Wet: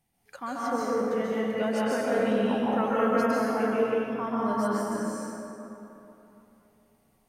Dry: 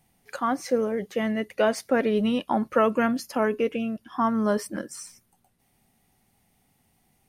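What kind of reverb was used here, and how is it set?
dense smooth reverb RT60 3.1 s, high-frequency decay 0.45×, pre-delay 120 ms, DRR −7.5 dB
level −10 dB

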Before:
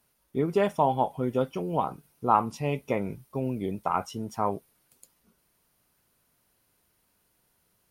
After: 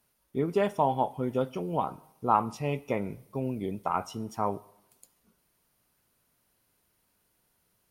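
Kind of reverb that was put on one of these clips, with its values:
coupled-rooms reverb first 0.82 s, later 2.4 s, from −27 dB, DRR 18.5 dB
level −2 dB

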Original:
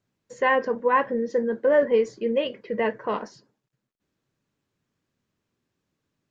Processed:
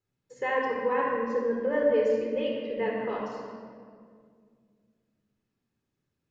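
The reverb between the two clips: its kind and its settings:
rectangular room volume 3,700 cubic metres, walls mixed, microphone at 4.1 metres
level −10.5 dB

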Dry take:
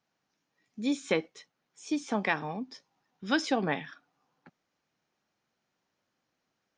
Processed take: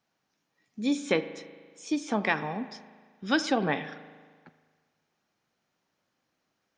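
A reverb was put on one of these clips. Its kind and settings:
spring reverb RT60 1.6 s, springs 38 ms, chirp 40 ms, DRR 12.5 dB
level +2 dB

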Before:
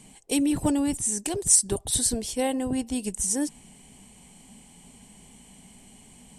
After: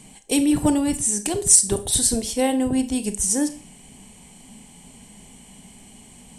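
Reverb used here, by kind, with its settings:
four-comb reverb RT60 0.37 s, combs from 27 ms, DRR 10.5 dB
level +4.5 dB

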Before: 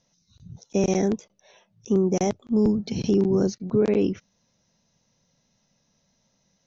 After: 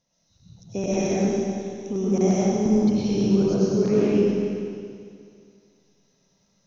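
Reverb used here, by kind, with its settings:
comb and all-pass reverb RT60 2.3 s, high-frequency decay 1×, pre-delay 65 ms, DRR −8 dB
level −6.5 dB

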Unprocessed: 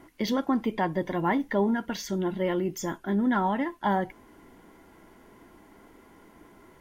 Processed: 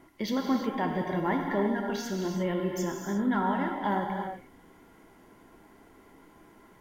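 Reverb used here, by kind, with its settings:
reverb whose tail is shaped and stops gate 380 ms flat, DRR 1.5 dB
level −4 dB

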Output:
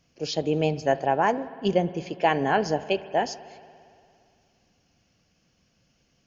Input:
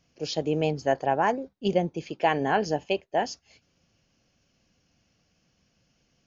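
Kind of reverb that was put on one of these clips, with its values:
spring reverb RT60 2.4 s, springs 57 ms, chirp 25 ms, DRR 15.5 dB
level +1.5 dB

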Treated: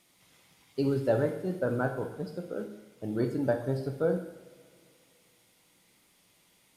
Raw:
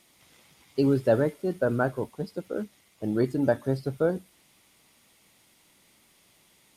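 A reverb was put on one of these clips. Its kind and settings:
coupled-rooms reverb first 0.78 s, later 2.8 s, from −18 dB, DRR 4.5 dB
level −5 dB

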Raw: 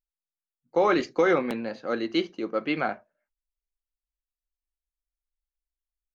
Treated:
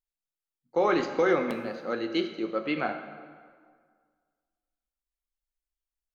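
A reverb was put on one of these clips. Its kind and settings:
dense smooth reverb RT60 1.8 s, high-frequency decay 0.7×, DRR 6.5 dB
level −3 dB

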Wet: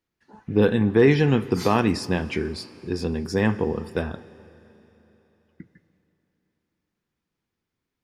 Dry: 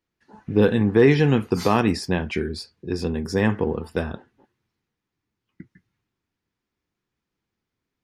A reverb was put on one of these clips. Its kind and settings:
four-comb reverb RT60 3.6 s, combs from 33 ms, DRR 17 dB
level −1 dB

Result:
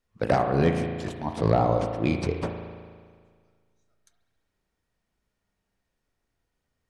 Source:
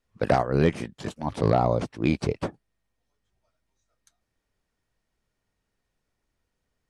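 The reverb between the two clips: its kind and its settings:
spring reverb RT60 1.8 s, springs 36 ms, chirp 35 ms, DRR 4.5 dB
level −1.5 dB

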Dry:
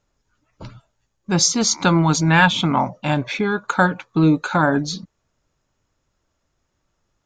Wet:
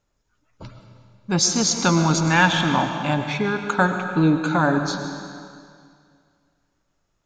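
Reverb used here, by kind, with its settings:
comb and all-pass reverb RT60 2.2 s, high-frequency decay 0.95×, pre-delay 70 ms, DRR 6 dB
level −2.5 dB

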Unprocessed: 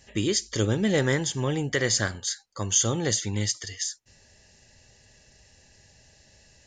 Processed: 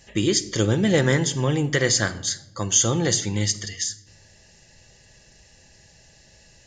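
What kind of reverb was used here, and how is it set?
rectangular room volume 3,300 cubic metres, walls furnished, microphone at 0.78 metres
level +3.5 dB

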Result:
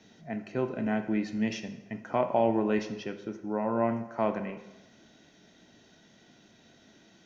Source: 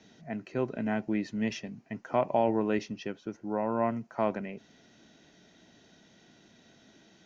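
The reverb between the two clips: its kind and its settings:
dense smooth reverb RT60 1 s, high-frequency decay 0.75×, DRR 7 dB

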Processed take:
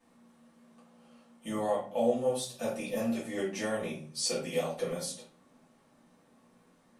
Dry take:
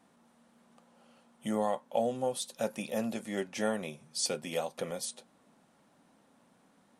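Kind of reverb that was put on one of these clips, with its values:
rectangular room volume 31 cubic metres, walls mixed, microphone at 1.7 metres
level −8.5 dB

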